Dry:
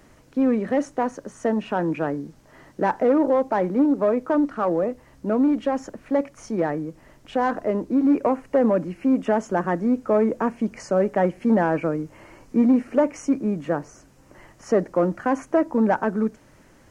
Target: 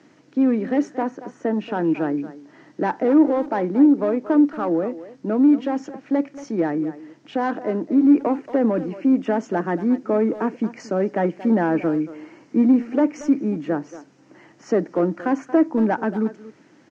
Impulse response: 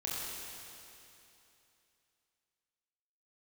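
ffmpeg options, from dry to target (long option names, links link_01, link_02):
-filter_complex "[0:a]highpass=frequency=140:width=0.5412,highpass=frequency=140:width=1.3066,equalizer=frequency=310:width_type=q:width=4:gain=7,equalizer=frequency=570:width_type=q:width=4:gain=-4,equalizer=frequency=1100:width_type=q:width=4:gain=-4,lowpass=frequency=6300:width=0.5412,lowpass=frequency=6300:width=1.3066,asettb=1/sr,asplit=3[link_01][link_02][link_03];[link_01]atrim=end=1.024[link_04];[link_02]atrim=start=1.02:end=1.54,asetpts=PTS-STARTPTS,afade=type=in:duration=0.004:curve=qsin,afade=type=out:start_time=0.516:duration=0.004:curve=qsin,acrossover=split=2700[link_05][link_06];[link_06]acompressor=threshold=-57dB:ratio=4:attack=1:release=60[link_07];[link_05][link_07]amix=inputs=2:normalize=0[link_08];[link_03]atrim=start=1.536[link_09];[link_04][link_08]acrossfade=duration=0.004:curve1=hsin:curve2=qsin[link_10];[link_10][link_09]acrossfade=duration=0.004:curve1=qsin:curve2=hsin,asplit=2[link_11][link_12];[link_12]adelay=230,highpass=300,lowpass=3400,asoftclip=type=hard:threshold=-16dB,volume=-14dB[link_13];[link_11][link_13]amix=inputs=2:normalize=0"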